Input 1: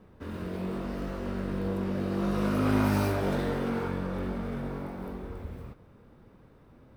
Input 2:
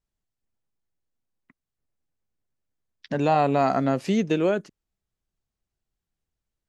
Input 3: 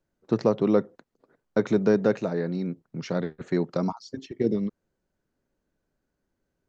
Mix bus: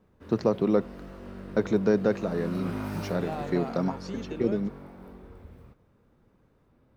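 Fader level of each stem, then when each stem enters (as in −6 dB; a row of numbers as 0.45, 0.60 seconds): −8.5, −16.0, −2.0 decibels; 0.00, 0.00, 0.00 seconds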